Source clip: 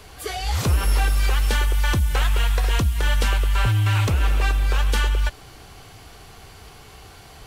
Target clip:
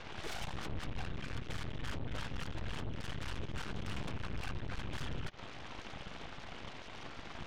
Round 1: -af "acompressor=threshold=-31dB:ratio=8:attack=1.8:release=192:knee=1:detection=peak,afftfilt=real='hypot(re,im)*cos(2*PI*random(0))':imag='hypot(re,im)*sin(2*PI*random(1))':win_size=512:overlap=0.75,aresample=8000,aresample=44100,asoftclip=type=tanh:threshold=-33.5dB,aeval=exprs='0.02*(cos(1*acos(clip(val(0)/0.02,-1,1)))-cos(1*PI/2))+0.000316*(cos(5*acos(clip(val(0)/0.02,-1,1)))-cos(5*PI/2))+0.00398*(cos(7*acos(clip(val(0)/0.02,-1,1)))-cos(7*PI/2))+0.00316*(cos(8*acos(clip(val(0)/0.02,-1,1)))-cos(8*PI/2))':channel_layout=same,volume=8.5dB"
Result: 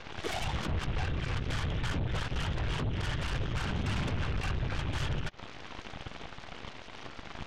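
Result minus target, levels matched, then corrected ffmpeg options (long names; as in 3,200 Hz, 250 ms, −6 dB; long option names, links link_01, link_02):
soft clipping: distortion −11 dB
-af "acompressor=threshold=-31dB:ratio=8:attack=1.8:release=192:knee=1:detection=peak,afftfilt=real='hypot(re,im)*cos(2*PI*random(0))':imag='hypot(re,im)*sin(2*PI*random(1))':win_size=512:overlap=0.75,aresample=8000,aresample=44100,asoftclip=type=tanh:threshold=-43.5dB,aeval=exprs='0.02*(cos(1*acos(clip(val(0)/0.02,-1,1)))-cos(1*PI/2))+0.000316*(cos(5*acos(clip(val(0)/0.02,-1,1)))-cos(5*PI/2))+0.00398*(cos(7*acos(clip(val(0)/0.02,-1,1)))-cos(7*PI/2))+0.00316*(cos(8*acos(clip(val(0)/0.02,-1,1)))-cos(8*PI/2))':channel_layout=same,volume=8.5dB"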